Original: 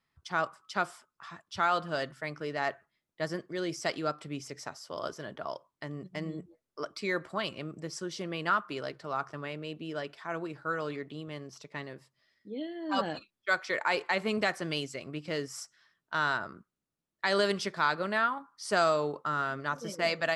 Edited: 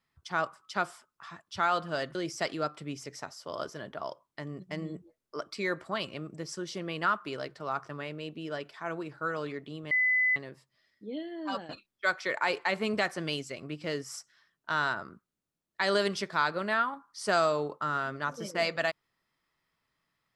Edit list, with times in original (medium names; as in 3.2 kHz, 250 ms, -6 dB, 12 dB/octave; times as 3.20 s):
2.15–3.59 s: delete
11.35–11.80 s: bleep 2.01 kHz -22.5 dBFS
12.80–13.13 s: fade out, to -15 dB